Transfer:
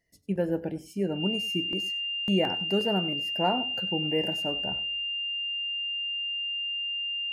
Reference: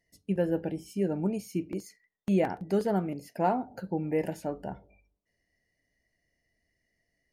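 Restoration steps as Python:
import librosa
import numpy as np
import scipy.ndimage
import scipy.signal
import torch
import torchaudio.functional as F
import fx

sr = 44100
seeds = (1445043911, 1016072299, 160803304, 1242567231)

y = fx.notch(x, sr, hz=2800.0, q=30.0)
y = fx.fix_echo_inverse(y, sr, delay_ms=97, level_db=-17.5)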